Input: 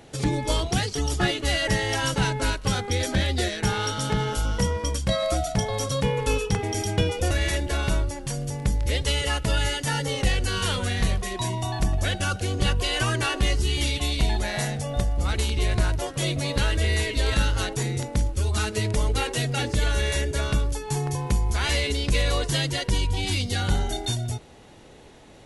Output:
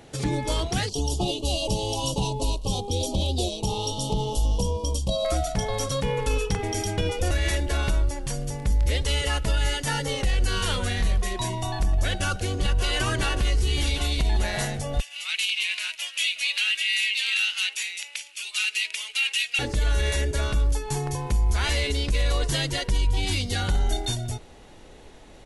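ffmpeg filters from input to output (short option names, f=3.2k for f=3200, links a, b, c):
-filter_complex "[0:a]asettb=1/sr,asplit=3[a][b][c];[a]atrim=end=0.894[d];[b]atrim=start=0.89:end=5.25,asetpts=PTS-STARTPTS,afade=t=in:d=0.004:c=qsin,afade=t=out:st=4.356:d=0.004:c=qsin,asuperstop=centerf=1700:order=8:qfactor=0.93[e];[c]atrim=start=5.246[f];[d][e]acrossfade=d=0.004:c1=hsin:c2=qsin[g];[g][f]acrossfade=d=0.004:c1=qsin:c2=hsin,asplit=2[h][i];[i]afade=t=in:st=12.16:d=0.01,afade=t=out:st=12.92:d=0.01,aecho=0:1:580|1160|1740|2320|2900|3480|4060|4640|5220:0.421697|0.274103|0.178167|0.115808|0.0752755|0.048929|0.0318039|0.0206725|0.0134371[j];[h][j]amix=inputs=2:normalize=0,asettb=1/sr,asplit=3[k][l][m];[k]atrim=end=15.004[n];[l]atrim=start=15:end=19.59,asetpts=PTS-STARTPTS,afade=t=in:d=0.004:c=qsin,afade=t=out:st=4.586:d=0.004:c=qsin,highpass=f=2.6k:t=q:w=5[o];[m]atrim=start=19.586[p];[n][o]acrossfade=d=0.004:c1=hsin:c2=qsin[q];[q][p]acrossfade=d=0.004:c1=qsin:c2=hsin,asubboost=boost=3.5:cutoff=51,alimiter=limit=-15dB:level=0:latency=1:release=53"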